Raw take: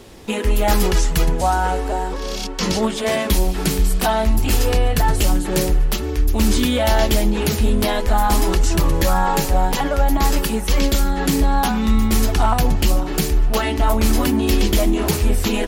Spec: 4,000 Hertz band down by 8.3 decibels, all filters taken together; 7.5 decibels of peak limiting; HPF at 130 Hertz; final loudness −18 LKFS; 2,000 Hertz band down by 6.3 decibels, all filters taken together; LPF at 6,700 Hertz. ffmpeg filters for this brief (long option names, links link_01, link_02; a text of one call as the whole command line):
ffmpeg -i in.wav -af "highpass=130,lowpass=6700,equalizer=frequency=2000:width_type=o:gain=-6,equalizer=frequency=4000:width_type=o:gain=-8.5,volume=7.5dB,alimiter=limit=-8.5dB:level=0:latency=1" out.wav